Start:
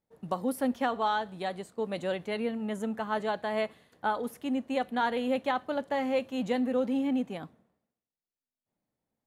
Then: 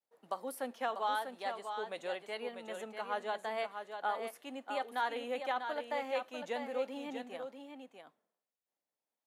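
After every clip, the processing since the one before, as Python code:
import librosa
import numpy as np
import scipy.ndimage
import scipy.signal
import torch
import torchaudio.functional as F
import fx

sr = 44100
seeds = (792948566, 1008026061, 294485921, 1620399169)

y = scipy.signal.sosfilt(scipy.signal.butter(2, 510.0, 'highpass', fs=sr, output='sos'), x)
y = fx.vibrato(y, sr, rate_hz=0.89, depth_cents=69.0)
y = y + 10.0 ** (-7.0 / 20.0) * np.pad(y, (int(644 * sr / 1000.0), 0))[:len(y)]
y = y * librosa.db_to_amplitude(-5.0)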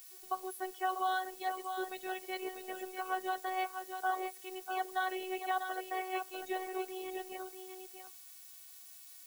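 y = fx.spec_topn(x, sr, count=64)
y = fx.dmg_noise_colour(y, sr, seeds[0], colour='blue', level_db=-55.0)
y = fx.robotise(y, sr, hz=373.0)
y = y * librosa.db_to_amplitude(3.5)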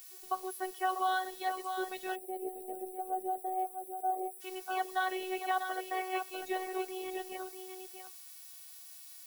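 y = fx.echo_wet_highpass(x, sr, ms=127, feedback_pct=69, hz=4200.0, wet_db=-11)
y = fx.spec_box(y, sr, start_s=2.15, length_s=2.26, low_hz=780.0, high_hz=7600.0, gain_db=-25)
y = y * librosa.db_to_amplitude(2.0)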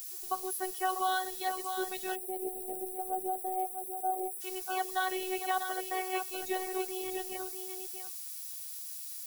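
y = fx.bass_treble(x, sr, bass_db=9, treble_db=9)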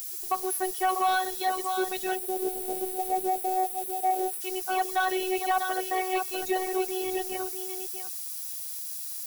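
y = fx.leveller(x, sr, passes=2)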